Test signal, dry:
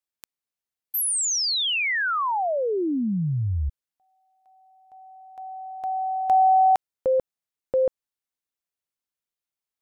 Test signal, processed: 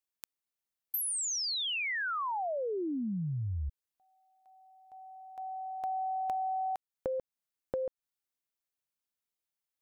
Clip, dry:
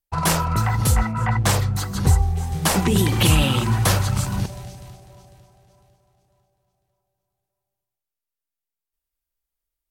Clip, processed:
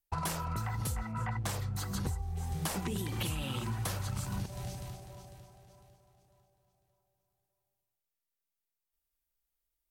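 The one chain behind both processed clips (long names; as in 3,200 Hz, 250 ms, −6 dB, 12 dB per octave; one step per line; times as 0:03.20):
high-shelf EQ 11,000 Hz +4 dB
downward compressor 12 to 1, threshold −29 dBFS
level −3 dB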